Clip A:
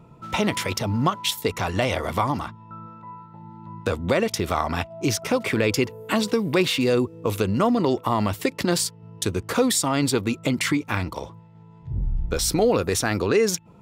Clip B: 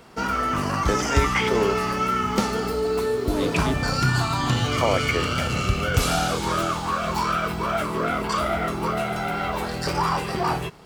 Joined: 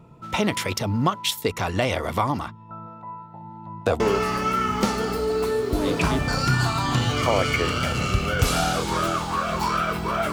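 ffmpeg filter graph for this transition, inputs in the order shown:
-filter_complex "[0:a]asettb=1/sr,asplit=3[a][b][c];[a]atrim=end=2.694[d];[b]atrim=start=2.69:end=4,asetpts=PTS-STARTPTS,afade=t=in:d=0.004:c=qsin,afade=t=out:st=1.306:d=0.004:c=qsin,equalizer=f=710:t=o:w=0.49:g=14[e];[c]atrim=start=3.996[f];[d][e]acrossfade=d=0.004:c1=hsin:c2=qsin[g];[g][f]acrossfade=d=0.004:c1=qsin:c2=hsin,apad=whole_dur=10.32,atrim=end=10.32,atrim=end=4.002[h];[1:a]atrim=start=1.548:end=7.87[i];[h][i]acrossfade=d=0.004:c1=hsin:c2=hsin"

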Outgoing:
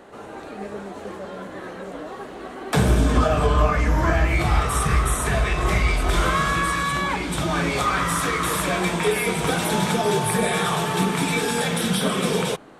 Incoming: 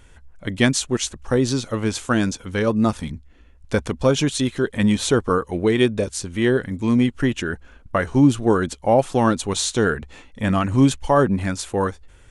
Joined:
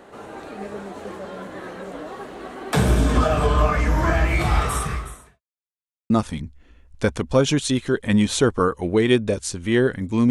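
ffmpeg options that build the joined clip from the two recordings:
-filter_complex "[0:a]apad=whole_dur=10.3,atrim=end=10.3,asplit=2[a][b];[a]atrim=end=5.41,asetpts=PTS-STARTPTS,afade=t=out:st=4.69:d=0.72:c=qua[c];[b]atrim=start=5.41:end=6.1,asetpts=PTS-STARTPTS,volume=0[d];[1:a]atrim=start=2.8:end=7,asetpts=PTS-STARTPTS,afade=t=in:d=0.004:c=hsin[e];[c][d][e]concat=n=3:v=0:a=1"

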